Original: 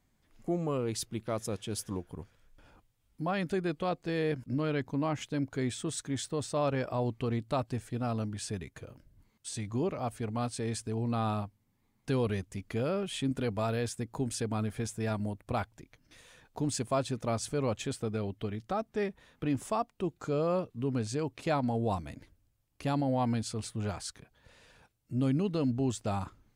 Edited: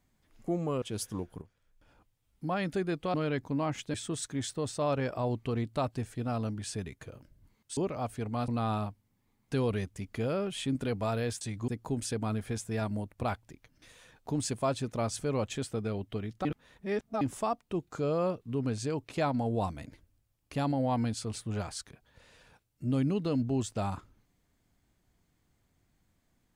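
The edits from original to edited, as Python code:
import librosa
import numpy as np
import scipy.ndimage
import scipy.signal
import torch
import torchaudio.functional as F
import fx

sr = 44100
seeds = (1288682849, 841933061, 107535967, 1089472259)

y = fx.edit(x, sr, fx.cut(start_s=0.82, length_s=0.77),
    fx.fade_in_from(start_s=2.19, length_s=1.07, floor_db=-13.0),
    fx.cut(start_s=3.91, length_s=0.66),
    fx.cut(start_s=5.37, length_s=0.32),
    fx.move(start_s=9.52, length_s=0.27, to_s=13.97),
    fx.cut(start_s=10.5, length_s=0.54),
    fx.reverse_span(start_s=18.74, length_s=0.76), tone=tone)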